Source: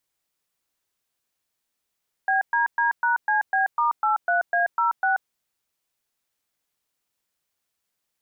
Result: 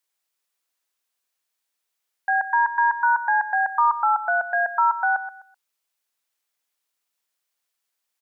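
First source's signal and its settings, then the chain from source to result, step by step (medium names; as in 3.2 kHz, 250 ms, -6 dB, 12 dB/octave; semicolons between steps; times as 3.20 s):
DTMF "BDD#CB*83A06", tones 133 ms, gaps 117 ms, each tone -21 dBFS
high-pass 690 Hz 6 dB/octave; dynamic bell 1 kHz, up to +7 dB, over -38 dBFS, Q 1.9; feedback delay 127 ms, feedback 26%, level -12 dB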